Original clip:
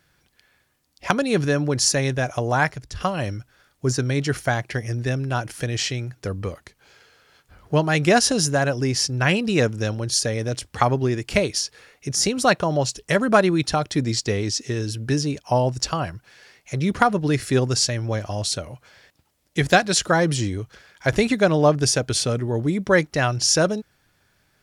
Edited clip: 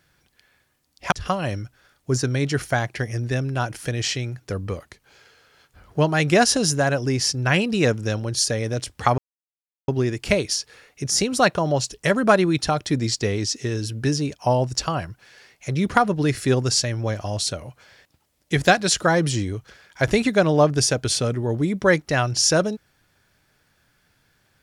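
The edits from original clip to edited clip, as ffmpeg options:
-filter_complex "[0:a]asplit=3[a][b][c];[a]atrim=end=1.122[d];[b]atrim=start=2.868:end=10.93,asetpts=PTS-STARTPTS,afade=t=out:st=8.058:d=0.004:c=hsin,apad=pad_dur=0.7[e];[c]atrim=start=10.93,asetpts=PTS-STARTPTS,afade=t=in:d=0.004:c=hsin[f];[e][f]concat=n=2:v=0:a=1[g];[d][g]acrossfade=d=0.004:c1=hsin:c2=hsin"

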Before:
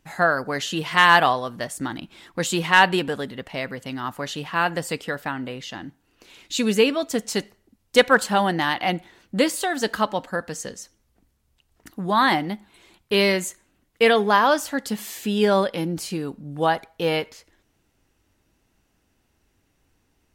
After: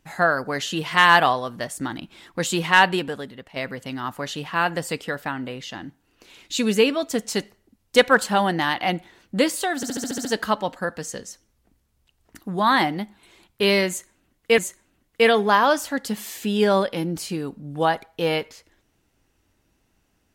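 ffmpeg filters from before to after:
-filter_complex "[0:a]asplit=10[a][b][c][d][e][f][g][h][i][j];[a]atrim=end=3.56,asetpts=PTS-STARTPTS,afade=t=out:st=2.76:d=0.8:silence=0.334965[k];[b]atrim=start=3.56:end=9.832,asetpts=PTS-STARTPTS,afade=t=in:d=0.004:c=hsin:silence=0.334965[l];[c]atrim=start=9.758:end=9.832[m];[d]atrim=start=9.758:end=9.832[n];[e]atrim=start=9.758:end=9.832[o];[f]atrim=start=9.758:end=9.832[p];[g]atrim=start=9.758:end=9.832[q];[h]atrim=start=9.758:end=9.832[r];[i]atrim=start=9.758:end=14.092[s];[j]atrim=start=13.388[t];[k][l]concat=n=2:v=0:a=1[u];[u][m]acrossfade=d=0.004:c1=hsin:c2=hsin[v];[v][n]acrossfade=d=0.004:c1=hsin:c2=hsin[w];[w][o]acrossfade=d=0.004:c1=hsin:c2=hsin[x];[x][p]acrossfade=d=0.004:c1=hsin:c2=hsin[y];[y][q]acrossfade=d=0.004:c1=hsin:c2=hsin[z];[z][r]acrossfade=d=0.004:c1=hsin:c2=hsin[aa];[aa][s]acrossfade=d=0.004:c1=hsin:c2=hsin[ab];[ab][t]acrossfade=d=0.004:c1=hsin:c2=hsin"

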